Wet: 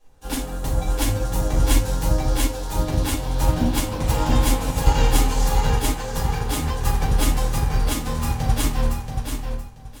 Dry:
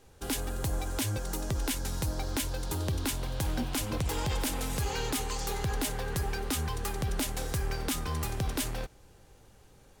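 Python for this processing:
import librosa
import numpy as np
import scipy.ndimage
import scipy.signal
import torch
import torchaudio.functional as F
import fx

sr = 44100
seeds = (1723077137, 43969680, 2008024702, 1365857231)

y = fx.echo_feedback(x, sr, ms=680, feedback_pct=34, wet_db=-4)
y = fx.room_shoebox(y, sr, seeds[0], volume_m3=260.0, walls='furnished', distance_m=5.7)
y = fx.upward_expand(y, sr, threshold_db=-34.0, expansion=1.5)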